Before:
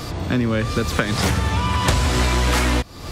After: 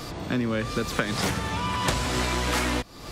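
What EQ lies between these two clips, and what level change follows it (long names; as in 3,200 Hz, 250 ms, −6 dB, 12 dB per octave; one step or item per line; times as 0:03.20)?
parametric band 78 Hz −10.5 dB 0.91 octaves
−5.0 dB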